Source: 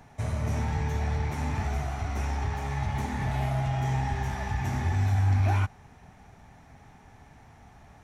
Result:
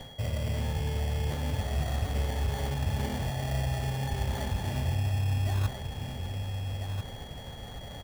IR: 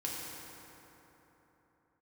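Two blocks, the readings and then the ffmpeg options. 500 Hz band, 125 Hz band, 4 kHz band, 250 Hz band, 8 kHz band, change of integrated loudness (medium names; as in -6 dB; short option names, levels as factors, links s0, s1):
+1.0 dB, -2.0 dB, +7.0 dB, -2.0 dB, +2.0 dB, -2.5 dB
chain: -filter_complex "[0:a]equalizer=f=530:w=3.1:g=15,areverse,acompressor=threshold=0.0158:ratio=12,areverse,lowshelf=f=240:g=7.5,asplit=2[s0][s1];[s1]adelay=1341,volume=0.501,highshelf=f=4000:g=-30.2[s2];[s0][s2]amix=inputs=2:normalize=0,acrusher=samples=17:mix=1:aa=0.000001,aeval=exprs='val(0)+0.00224*sin(2*PI*3300*n/s)':c=same,bandreject=f=63.99:t=h:w=4,bandreject=f=127.98:t=h:w=4,bandreject=f=191.97:t=h:w=4,bandreject=f=255.96:t=h:w=4,bandreject=f=319.95:t=h:w=4,bandreject=f=383.94:t=h:w=4,bandreject=f=447.93:t=h:w=4,bandreject=f=511.92:t=h:w=4,bandreject=f=575.91:t=h:w=4,bandreject=f=639.9:t=h:w=4,bandreject=f=703.89:t=h:w=4,bandreject=f=767.88:t=h:w=4,bandreject=f=831.87:t=h:w=4,bandreject=f=895.86:t=h:w=4,bandreject=f=959.85:t=h:w=4,bandreject=f=1023.84:t=h:w=4,bandreject=f=1087.83:t=h:w=4,bandreject=f=1151.82:t=h:w=4,bandreject=f=1215.81:t=h:w=4,bandreject=f=1279.8:t=h:w=4,bandreject=f=1343.79:t=h:w=4,bandreject=f=1407.78:t=h:w=4,bandreject=f=1471.77:t=h:w=4,bandreject=f=1535.76:t=h:w=4,bandreject=f=1599.75:t=h:w=4,bandreject=f=1663.74:t=h:w=4,bandreject=f=1727.73:t=h:w=4,bandreject=f=1791.72:t=h:w=4,bandreject=f=1855.71:t=h:w=4,bandreject=f=1919.7:t=h:w=4,bandreject=f=1983.69:t=h:w=4,bandreject=f=2047.68:t=h:w=4,volume=1.58"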